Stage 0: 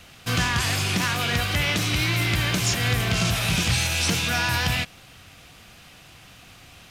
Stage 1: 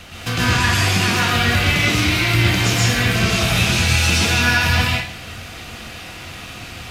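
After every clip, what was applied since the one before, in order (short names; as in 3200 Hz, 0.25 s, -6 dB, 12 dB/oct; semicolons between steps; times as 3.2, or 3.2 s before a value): high shelf 6800 Hz -5.5 dB; compressor 2:1, threshold -35 dBFS, peak gain reduction 9.5 dB; plate-style reverb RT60 0.68 s, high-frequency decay 0.95×, pre-delay 0.105 s, DRR -5 dB; gain +9 dB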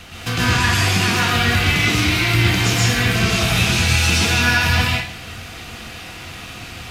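notch 580 Hz, Q 12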